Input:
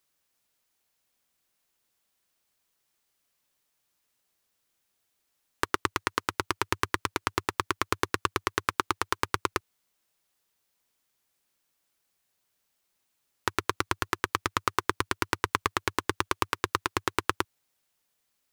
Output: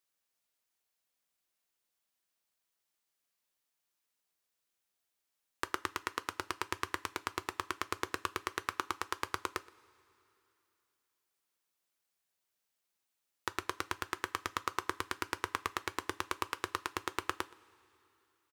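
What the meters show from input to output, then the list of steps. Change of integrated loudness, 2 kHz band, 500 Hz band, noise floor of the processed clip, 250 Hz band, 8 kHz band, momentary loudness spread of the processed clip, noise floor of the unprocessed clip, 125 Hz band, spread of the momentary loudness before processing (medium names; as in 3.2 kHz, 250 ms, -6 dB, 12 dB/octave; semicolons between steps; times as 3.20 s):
-8.5 dB, -8.0 dB, -9.5 dB, -85 dBFS, -9.5 dB, -7.5 dB, 3 LU, -77 dBFS, -13.0 dB, 3 LU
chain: bass shelf 260 Hz -5.5 dB; echo from a far wall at 21 m, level -23 dB; two-slope reverb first 0.22 s, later 3 s, from -20 dB, DRR 13 dB; trim -8 dB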